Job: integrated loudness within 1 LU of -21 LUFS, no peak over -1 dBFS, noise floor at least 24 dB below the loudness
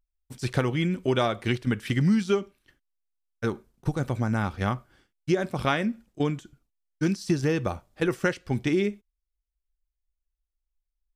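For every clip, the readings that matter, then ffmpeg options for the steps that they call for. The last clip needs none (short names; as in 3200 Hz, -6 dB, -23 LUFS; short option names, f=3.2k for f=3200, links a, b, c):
loudness -27.5 LUFS; peak -9.0 dBFS; loudness target -21.0 LUFS
-> -af "volume=6.5dB"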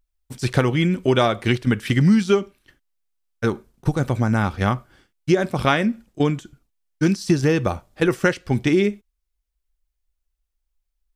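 loudness -21.0 LUFS; peak -2.5 dBFS; noise floor -77 dBFS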